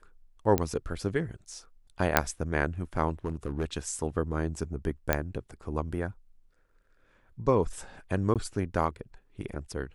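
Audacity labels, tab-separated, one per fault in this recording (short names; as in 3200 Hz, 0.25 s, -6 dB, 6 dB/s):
0.580000	0.580000	pop -10 dBFS
2.170000	2.170000	pop -3 dBFS
3.250000	3.650000	clipped -25 dBFS
5.130000	5.130000	pop -8 dBFS
8.340000	8.360000	gap 17 ms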